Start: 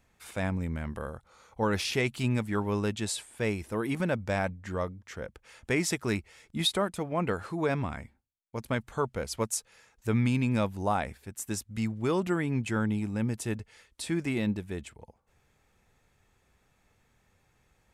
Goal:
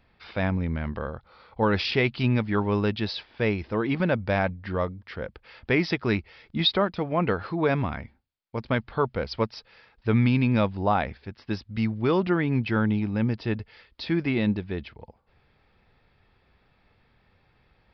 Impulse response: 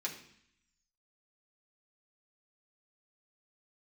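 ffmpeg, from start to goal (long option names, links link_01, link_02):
-af "aresample=11025,aresample=44100,volume=5dB"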